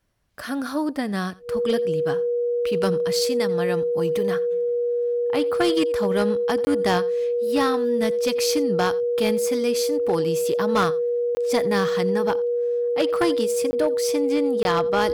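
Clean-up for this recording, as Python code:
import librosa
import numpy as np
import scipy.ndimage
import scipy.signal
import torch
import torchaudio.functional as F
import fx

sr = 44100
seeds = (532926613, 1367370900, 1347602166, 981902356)

y = fx.fix_declip(x, sr, threshold_db=-14.0)
y = fx.notch(y, sr, hz=480.0, q=30.0)
y = fx.fix_interpolate(y, sr, at_s=(6.65, 11.35, 13.71, 14.63), length_ms=20.0)
y = fx.fix_echo_inverse(y, sr, delay_ms=87, level_db=-22.0)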